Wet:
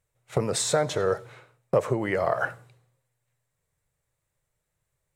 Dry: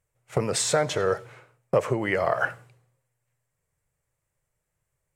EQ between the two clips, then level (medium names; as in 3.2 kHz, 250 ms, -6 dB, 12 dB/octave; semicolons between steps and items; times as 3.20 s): dynamic bell 3 kHz, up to -6 dB, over -43 dBFS, Q 0.75; peaking EQ 3.8 kHz +7.5 dB 0.25 oct; 0.0 dB